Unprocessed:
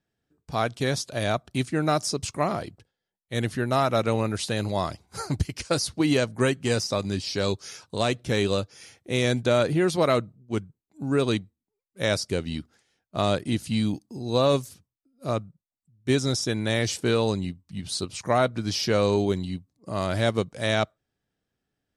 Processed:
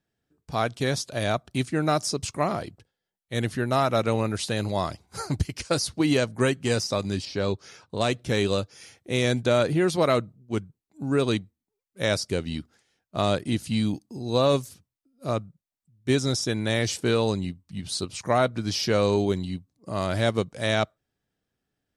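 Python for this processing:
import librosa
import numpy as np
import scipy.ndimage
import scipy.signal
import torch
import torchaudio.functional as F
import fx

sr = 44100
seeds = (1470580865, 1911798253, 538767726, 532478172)

y = fx.lowpass(x, sr, hz=2200.0, slope=6, at=(7.25, 8.01))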